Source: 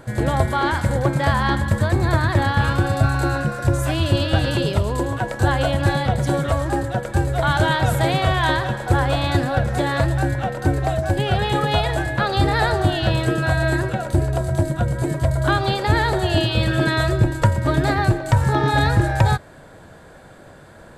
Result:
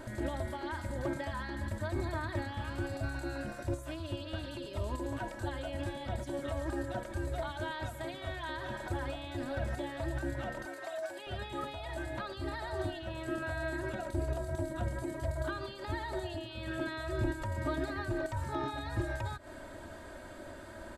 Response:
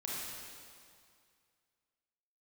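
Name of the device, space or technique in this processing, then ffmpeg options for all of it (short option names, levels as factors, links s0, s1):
de-esser from a sidechain: -filter_complex "[0:a]asplit=2[s0][s1];[s1]highpass=4800,apad=whole_len=924976[s2];[s0][s2]sidechaincompress=threshold=0.00158:ratio=4:attack=4.7:release=93,asettb=1/sr,asplit=3[s3][s4][s5];[s3]atrim=end=10.654[s6];[s4]atrim=start=10.65:end=11.27,asetpts=PTS-STARTPTS,afade=t=in:d=0.004:c=qsin,afade=t=out:st=0.616:d=0.004:c=qsin,highpass=650[s7];[s5]atrim=start=11.266[s8];[s6][s7]acrossfade=d=0.004:c1=hsin:c2=qsin[s9];[s9][s8]acrossfade=d=0.004:c1=qsin:c2=hsin,aecho=1:1:3.2:0.82,volume=0.596"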